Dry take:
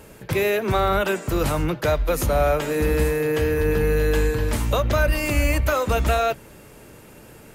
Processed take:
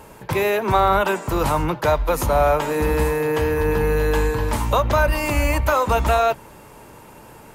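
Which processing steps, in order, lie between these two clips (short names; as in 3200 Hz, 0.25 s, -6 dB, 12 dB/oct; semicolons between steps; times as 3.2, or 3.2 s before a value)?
bell 940 Hz +11.5 dB 0.62 oct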